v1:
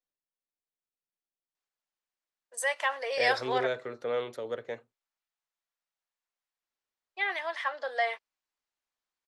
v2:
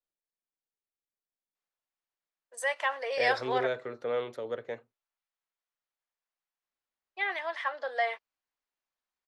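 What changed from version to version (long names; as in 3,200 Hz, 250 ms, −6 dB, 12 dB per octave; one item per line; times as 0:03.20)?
master: add high-shelf EQ 4,900 Hz −7.5 dB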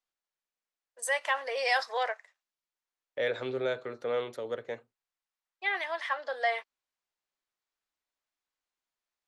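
first voice: entry −1.55 s
master: add high-shelf EQ 4,900 Hz +7.5 dB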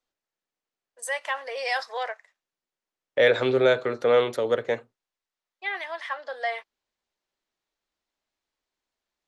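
second voice +11.5 dB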